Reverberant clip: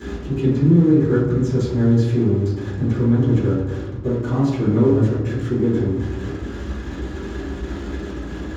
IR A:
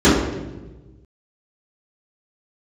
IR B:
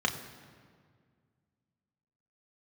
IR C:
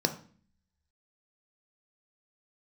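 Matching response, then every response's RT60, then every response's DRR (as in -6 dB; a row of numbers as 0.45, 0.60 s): A; 1.2, 1.9, 0.45 s; -14.5, 2.0, 6.0 dB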